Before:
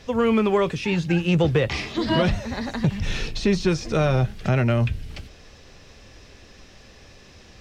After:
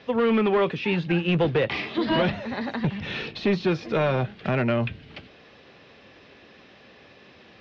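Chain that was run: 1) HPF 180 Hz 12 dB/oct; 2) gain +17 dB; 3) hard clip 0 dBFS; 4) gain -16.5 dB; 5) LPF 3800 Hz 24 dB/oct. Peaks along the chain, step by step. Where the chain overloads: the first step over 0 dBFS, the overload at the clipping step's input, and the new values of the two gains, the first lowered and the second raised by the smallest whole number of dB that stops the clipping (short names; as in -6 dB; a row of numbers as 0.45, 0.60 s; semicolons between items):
-9.5, +7.5, 0.0, -16.5, -15.0 dBFS; step 2, 7.5 dB; step 2 +9 dB, step 4 -8.5 dB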